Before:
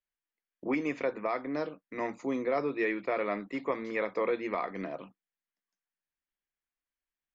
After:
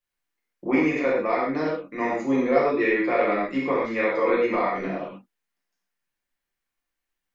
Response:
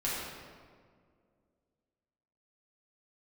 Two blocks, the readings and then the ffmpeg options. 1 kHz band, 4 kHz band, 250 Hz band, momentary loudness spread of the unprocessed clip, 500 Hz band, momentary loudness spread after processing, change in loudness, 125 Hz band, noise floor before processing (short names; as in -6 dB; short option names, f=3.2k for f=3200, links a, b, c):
+9.5 dB, +8.5 dB, +10.0 dB, 7 LU, +9.0 dB, 8 LU, +9.5 dB, +9.5 dB, under -85 dBFS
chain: -filter_complex "[1:a]atrim=start_sample=2205,atrim=end_sample=6174[a];[0:a][a]afir=irnorm=-1:irlink=0,volume=4dB"